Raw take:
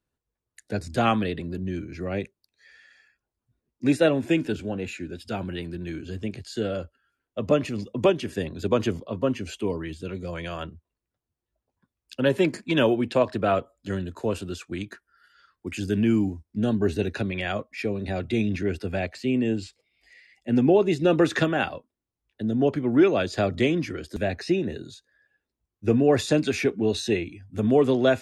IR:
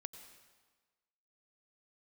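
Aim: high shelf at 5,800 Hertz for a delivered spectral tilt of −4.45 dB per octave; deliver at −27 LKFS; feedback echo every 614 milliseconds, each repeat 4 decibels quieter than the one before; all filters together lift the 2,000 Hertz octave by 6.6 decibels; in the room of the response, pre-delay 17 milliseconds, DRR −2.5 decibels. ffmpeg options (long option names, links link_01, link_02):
-filter_complex "[0:a]equalizer=frequency=2000:width_type=o:gain=8,highshelf=frequency=5800:gain=6.5,aecho=1:1:614|1228|1842|2456|3070|3684|4298|4912|5526:0.631|0.398|0.25|0.158|0.0994|0.0626|0.0394|0.0249|0.0157,asplit=2[link_01][link_02];[1:a]atrim=start_sample=2205,adelay=17[link_03];[link_02][link_03]afir=irnorm=-1:irlink=0,volume=6.5dB[link_04];[link_01][link_04]amix=inputs=2:normalize=0,volume=-8.5dB"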